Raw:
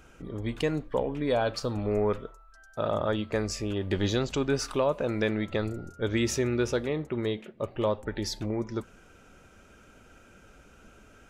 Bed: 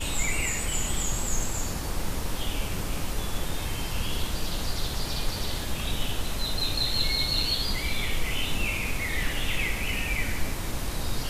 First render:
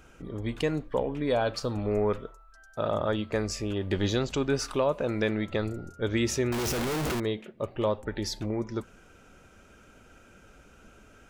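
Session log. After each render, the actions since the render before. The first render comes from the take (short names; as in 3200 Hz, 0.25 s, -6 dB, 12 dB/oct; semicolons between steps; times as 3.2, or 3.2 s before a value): 6.52–7.2 infinite clipping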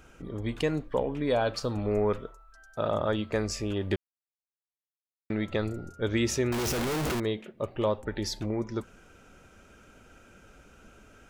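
3.96–5.3 mute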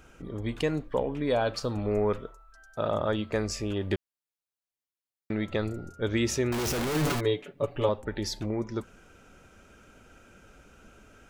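6.94–7.89 comb 7 ms, depth 84%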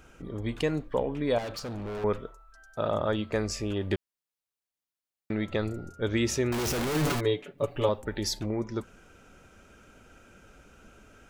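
1.38–2.04 hard clip -33.5 dBFS; 7.58–8.39 high shelf 5600 Hz +7.5 dB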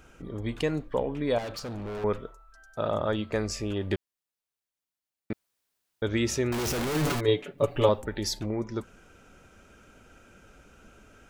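5.33–6.02 room tone; 7.28–8.06 gain +4 dB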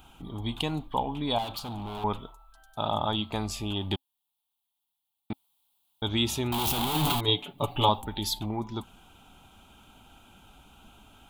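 EQ curve 270 Hz 0 dB, 530 Hz -11 dB, 830 Hz +11 dB, 1800 Hz -11 dB, 3400 Hz +12 dB, 5500 Hz -6 dB, 12000 Hz +9 dB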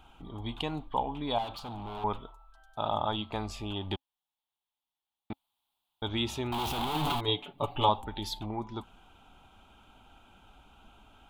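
LPF 2200 Hz 6 dB/oct; bell 160 Hz -6 dB 2.4 oct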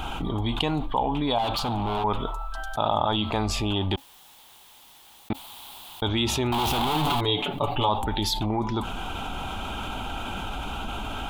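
fast leveller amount 70%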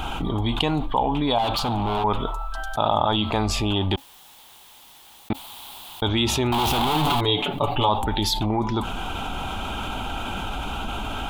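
gain +3 dB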